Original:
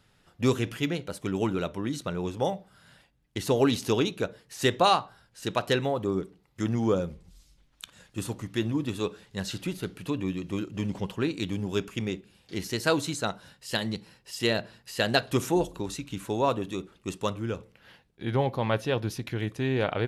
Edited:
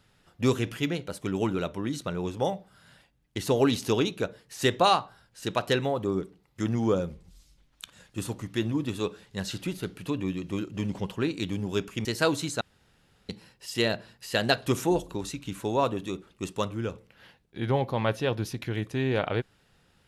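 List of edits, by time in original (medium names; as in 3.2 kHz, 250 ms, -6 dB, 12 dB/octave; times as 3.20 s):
12.05–12.70 s: delete
13.26–13.94 s: room tone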